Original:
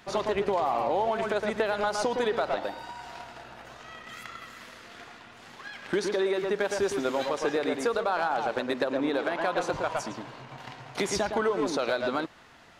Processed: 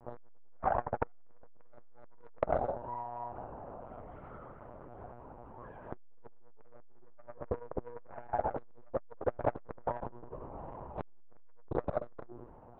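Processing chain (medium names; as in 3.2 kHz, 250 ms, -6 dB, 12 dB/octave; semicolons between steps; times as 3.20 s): local Wiener filter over 9 samples; 6.18–8.21 s: low-pass 2.6 kHz 12 dB/octave; de-hum 293 Hz, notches 4; level-controlled noise filter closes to 1.8 kHz, open at -24.5 dBFS; FFT filter 230 Hz 0 dB, 330 Hz +2 dB, 1 kHz -2 dB, 1.9 kHz -22 dB; frequency shift +23 Hz; simulated room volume 160 m³, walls furnished, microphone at 1.7 m; monotone LPC vocoder at 8 kHz 120 Hz; transformer saturation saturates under 800 Hz; trim -1.5 dB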